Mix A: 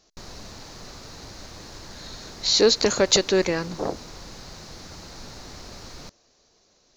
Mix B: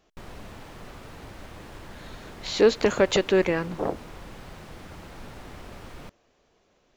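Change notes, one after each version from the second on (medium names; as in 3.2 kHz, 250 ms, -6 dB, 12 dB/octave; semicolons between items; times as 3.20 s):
master: add high-order bell 5.2 kHz -14 dB 1 oct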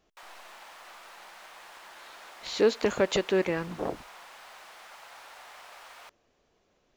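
speech -4.5 dB; background: add high-pass 700 Hz 24 dB/octave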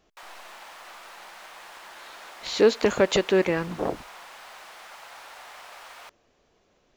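speech +4.5 dB; background +4.0 dB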